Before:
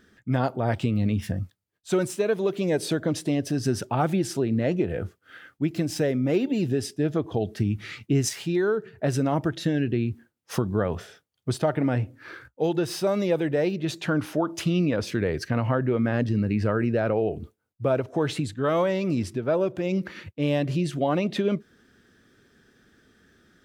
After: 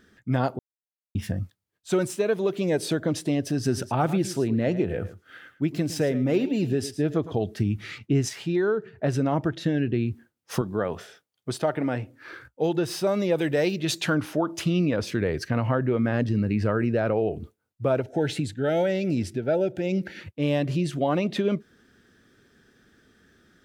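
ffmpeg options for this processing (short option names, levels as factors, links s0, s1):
-filter_complex "[0:a]asettb=1/sr,asplit=3[s0][s1][s2];[s0]atrim=end=3.554[s3];[s1]atrim=start=3.55:end=7.45,asetpts=PTS-STARTPTS,afade=t=in:d=0.004:c=qsin,afade=t=out:st=3.896:d=0.004:c=qsin,aecho=1:1:110:0.188,atrim=end_sample=171990[s4];[s2]atrim=start=7.446[s5];[s3][s4]acrossfade=d=0.004:c1=hsin:c2=qsin[s6];[s6][s5]acrossfade=d=0.004:c1=qsin:c2=hsin,asettb=1/sr,asplit=3[s7][s8][s9];[s7]atrim=end=7.984[s10];[s8]atrim=start=7.98:end=9.94,asetpts=PTS-STARTPTS,afade=t=in:d=0.004:c=qsin,afade=t=out:st=1.956:d=0.004:c=qsin,highshelf=f=6400:g=-9.5[s11];[s9]atrim=start=9.936[s12];[s10][s11]acrossfade=d=0.004:c1=hsin:c2=qsin[s13];[s13][s12]acrossfade=d=0.004:c1=qsin:c2=hsin,asettb=1/sr,asplit=3[s14][s15][s16];[s14]atrim=end=10.614[s17];[s15]atrim=start=10.61:end=12.33,asetpts=PTS-STARTPTS,afade=t=in:d=0.004:c=qsin,afade=t=out:st=1.716:d=0.004:c=qsin,highpass=f=240:p=1[s18];[s16]atrim=start=12.326[s19];[s17][s18]acrossfade=d=0.004:c1=hsin:c2=qsin[s20];[s20][s19]acrossfade=d=0.004:c1=qsin:c2=hsin,asettb=1/sr,asplit=3[s21][s22][s23];[s21]atrim=end=13.384[s24];[s22]atrim=start=13.38:end=14.15,asetpts=PTS-STARTPTS,afade=t=in:d=0.004:c=qsin,afade=t=out:st=0.766:d=0.004:c=qsin,highshelf=f=2400:g=10[s25];[s23]atrim=start=14.146[s26];[s24][s25]acrossfade=d=0.004:c1=hsin:c2=qsin[s27];[s27][s26]acrossfade=d=0.004:c1=qsin:c2=hsin,asettb=1/sr,asplit=3[s28][s29][s30];[s28]atrim=end=18.014[s31];[s29]atrim=start=18.01:end=20.21,asetpts=PTS-STARTPTS,afade=t=in:d=0.004:c=qsin,afade=t=out:st=2.196:d=0.004:c=qsin,asuperstop=centerf=1100:order=12:qfactor=2.6[s32];[s30]atrim=start=20.206[s33];[s31][s32]acrossfade=d=0.004:c1=hsin:c2=qsin[s34];[s34][s33]acrossfade=d=0.004:c1=qsin:c2=hsin,asplit=3[s35][s36][s37];[s35]atrim=end=0.59,asetpts=PTS-STARTPTS,afade=t=out:st=0.586:d=0.004:c=hsin[s38];[s36]atrim=start=0.59:end=1.15,asetpts=PTS-STARTPTS,volume=0[s39];[s37]atrim=start=1.15,asetpts=PTS-STARTPTS,afade=t=in:d=0.004:c=hsin[s40];[s38][s39][s40]concat=n=3:v=0:a=1"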